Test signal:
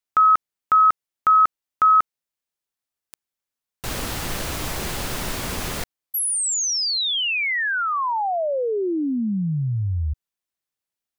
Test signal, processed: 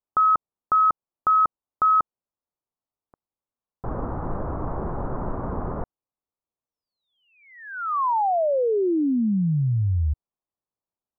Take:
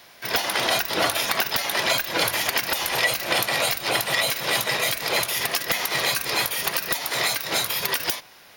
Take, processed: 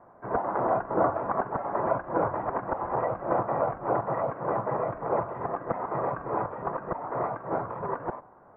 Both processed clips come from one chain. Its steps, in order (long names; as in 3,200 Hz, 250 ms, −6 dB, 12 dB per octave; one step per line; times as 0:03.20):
Butterworth low-pass 1,200 Hz 36 dB per octave
level +1.5 dB